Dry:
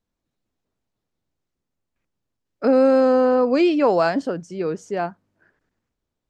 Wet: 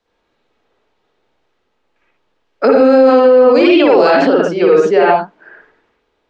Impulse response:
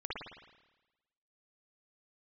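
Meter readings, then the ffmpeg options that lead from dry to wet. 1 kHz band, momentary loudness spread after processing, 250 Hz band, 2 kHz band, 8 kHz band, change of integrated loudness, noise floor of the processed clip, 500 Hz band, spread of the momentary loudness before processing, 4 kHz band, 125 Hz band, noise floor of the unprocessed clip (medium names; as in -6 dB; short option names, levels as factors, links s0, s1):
+10.0 dB, 5 LU, +7.5 dB, +12.0 dB, no reading, +9.5 dB, -66 dBFS, +10.0 dB, 12 LU, +12.5 dB, +5.5 dB, -82 dBFS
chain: -filter_complex "[0:a]acrossover=split=380|2500[s0][s1][s2];[s1]acompressor=threshold=0.0501:ratio=6[s3];[s0][s3][s2]amix=inputs=3:normalize=0,acrossover=split=330 5800:gain=0.158 1 0.1[s4][s5][s6];[s4][s5][s6]amix=inputs=3:normalize=0[s7];[1:a]atrim=start_sample=2205,afade=t=out:st=0.21:d=0.01,atrim=end_sample=9702[s8];[s7][s8]afir=irnorm=-1:irlink=0,acontrast=72,alimiter=level_in=5.62:limit=0.891:release=50:level=0:latency=1,volume=0.891"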